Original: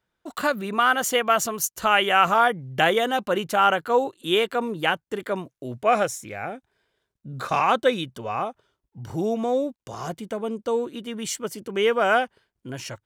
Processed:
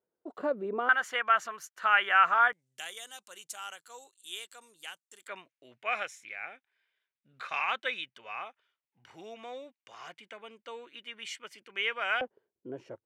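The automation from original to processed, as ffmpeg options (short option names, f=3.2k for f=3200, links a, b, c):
-af "asetnsamples=n=441:p=0,asendcmd='0.89 bandpass f 1600;2.53 bandpass f 7900;5.28 bandpass f 2300;12.21 bandpass f 420',bandpass=f=440:t=q:w=2.3:csg=0"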